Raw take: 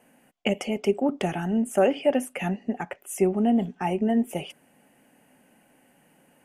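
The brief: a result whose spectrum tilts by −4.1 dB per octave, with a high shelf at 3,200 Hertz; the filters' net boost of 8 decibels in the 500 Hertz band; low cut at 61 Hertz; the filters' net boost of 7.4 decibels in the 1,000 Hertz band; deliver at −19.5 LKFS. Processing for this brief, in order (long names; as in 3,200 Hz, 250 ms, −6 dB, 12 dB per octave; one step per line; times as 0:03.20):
high-pass filter 61 Hz
parametric band 500 Hz +8.5 dB
parametric band 1,000 Hz +6.5 dB
high-shelf EQ 3,200 Hz −4.5 dB
level +1 dB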